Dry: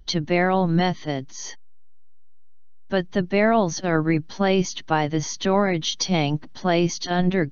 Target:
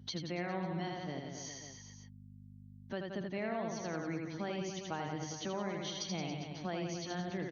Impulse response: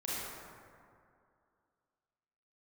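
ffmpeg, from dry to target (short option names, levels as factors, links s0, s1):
-filter_complex "[0:a]asplit=2[s0][s1];[s1]aecho=0:1:80|172|277.8|399.5|539.4:0.631|0.398|0.251|0.158|0.1[s2];[s0][s2]amix=inputs=2:normalize=0,aeval=exprs='val(0)+0.00708*(sin(2*PI*50*n/s)+sin(2*PI*2*50*n/s)/2+sin(2*PI*3*50*n/s)/3+sin(2*PI*4*50*n/s)/4+sin(2*PI*5*50*n/s)/5)':c=same,highpass=f=75:w=0.5412,highpass=f=75:w=1.3066,acompressor=threshold=0.00631:ratio=2,volume=0.596"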